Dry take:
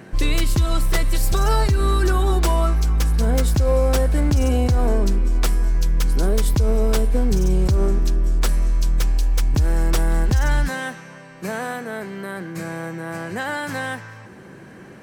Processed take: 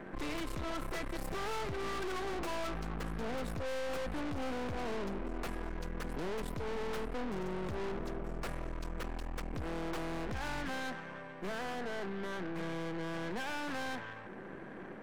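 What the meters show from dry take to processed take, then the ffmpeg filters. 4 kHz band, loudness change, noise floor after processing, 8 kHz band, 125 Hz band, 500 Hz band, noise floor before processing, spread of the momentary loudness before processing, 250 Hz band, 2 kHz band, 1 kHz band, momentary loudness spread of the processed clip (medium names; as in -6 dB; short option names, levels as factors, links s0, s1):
-14.0 dB, -18.5 dB, -47 dBFS, -20.5 dB, -24.0 dB, -13.5 dB, -42 dBFS, 11 LU, -14.0 dB, -11.5 dB, -12.0 dB, 5 LU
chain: -filter_complex "[0:a]acrossover=split=170 2300:gain=0.112 1 0.126[s0][s1][s2];[s0][s1][s2]amix=inputs=3:normalize=0,aeval=exprs='(tanh(79.4*val(0)+0.8)-tanh(0.8))/79.4':c=same,volume=1.12"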